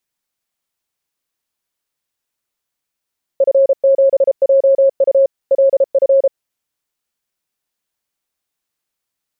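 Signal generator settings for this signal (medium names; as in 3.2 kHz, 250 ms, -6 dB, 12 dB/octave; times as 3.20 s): Morse "F7JU LF" 33 wpm 544 Hz -7 dBFS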